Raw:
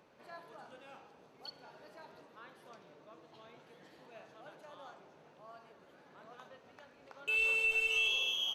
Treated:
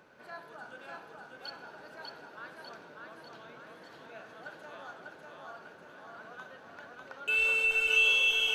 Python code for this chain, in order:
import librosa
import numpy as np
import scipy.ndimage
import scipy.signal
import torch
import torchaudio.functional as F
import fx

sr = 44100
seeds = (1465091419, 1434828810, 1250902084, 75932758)

y = fx.peak_eq(x, sr, hz=1500.0, db=11.0, octaves=0.24)
y = fx.echo_feedback(y, sr, ms=596, feedback_pct=53, wet_db=-3.0)
y = y * 10.0 ** (3.5 / 20.0)